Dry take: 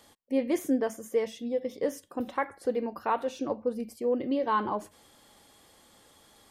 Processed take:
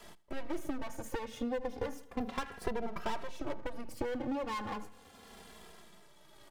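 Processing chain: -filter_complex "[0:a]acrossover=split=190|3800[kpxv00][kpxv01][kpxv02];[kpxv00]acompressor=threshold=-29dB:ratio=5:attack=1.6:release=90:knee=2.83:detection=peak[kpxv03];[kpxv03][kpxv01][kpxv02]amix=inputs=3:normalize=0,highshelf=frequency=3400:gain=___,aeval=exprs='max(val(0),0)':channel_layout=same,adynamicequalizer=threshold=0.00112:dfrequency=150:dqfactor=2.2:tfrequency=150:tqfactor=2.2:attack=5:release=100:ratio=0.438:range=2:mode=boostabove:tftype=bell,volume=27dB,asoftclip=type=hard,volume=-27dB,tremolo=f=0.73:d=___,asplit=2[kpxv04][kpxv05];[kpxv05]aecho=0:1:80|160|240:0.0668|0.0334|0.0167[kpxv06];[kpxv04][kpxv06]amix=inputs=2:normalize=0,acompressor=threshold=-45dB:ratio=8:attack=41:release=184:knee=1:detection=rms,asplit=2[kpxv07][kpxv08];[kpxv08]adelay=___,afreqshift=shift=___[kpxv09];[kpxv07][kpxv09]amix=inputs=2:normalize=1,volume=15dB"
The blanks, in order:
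-9, 0.65, 2.6, -0.34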